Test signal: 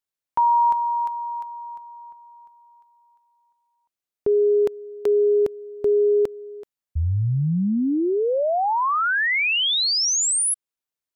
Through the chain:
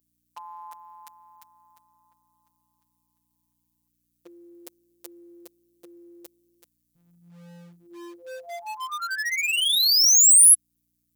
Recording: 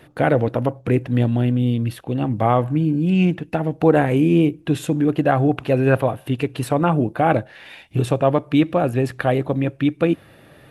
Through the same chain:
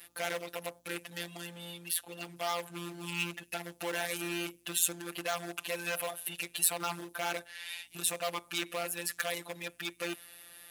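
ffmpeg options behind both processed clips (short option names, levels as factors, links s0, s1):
-filter_complex "[0:a]highshelf=f=5500:g=4,afftfilt=real='hypot(re,im)*cos(PI*b)':imag='0':win_size=1024:overlap=0.75,aeval=exprs='val(0)+0.00251*(sin(2*PI*60*n/s)+sin(2*PI*2*60*n/s)/2+sin(2*PI*3*60*n/s)/3+sin(2*PI*4*60*n/s)/4+sin(2*PI*5*60*n/s)/5)':c=same,apsyclip=3.35,asplit=2[s0][s1];[s1]aeval=exprs='0.188*(abs(mod(val(0)/0.188+3,4)-2)-1)':c=same,volume=0.447[s2];[s0][s2]amix=inputs=2:normalize=0,aderivative,volume=0.631"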